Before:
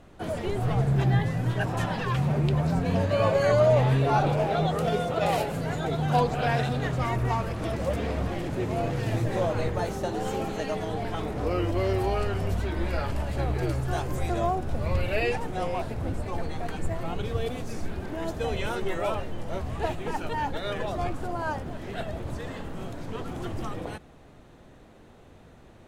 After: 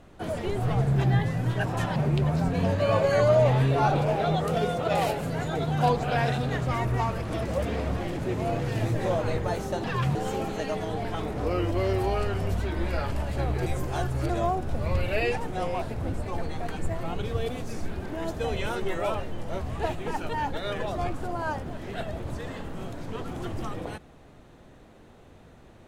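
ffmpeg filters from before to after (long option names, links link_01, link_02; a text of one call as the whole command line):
ffmpeg -i in.wav -filter_complex "[0:a]asplit=6[link_01][link_02][link_03][link_04][link_05][link_06];[link_01]atrim=end=1.962[link_07];[link_02]atrim=start=2.268:end=10.152[link_08];[link_03]atrim=start=1.958:end=2.272[link_09];[link_04]atrim=start=10.148:end=13.662[link_10];[link_05]atrim=start=13.658:end=14.292,asetpts=PTS-STARTPTS,areverse[link_11];[link_06]atrim=start=14.288[link_12];[link_07][link_08]acrossfade=duration=0.004:curve1=hsin:curve2=hsin[link_13];[link_13][link_09]acrossfade=duration=0.004:curve1=hsin:curve2=hsin[link_14];[link_14][link_10]acrossfade=duration=0.004:curve1=hsin:curve2=hsin[link_15];[link_15][link_11]acrossfade=duration=0.004:curve1=hsin:curve2=hsin[link_16];[link_16][link_12]acrossfade=duration=0.004:curve1=hsin:curve2=hsin" out.wav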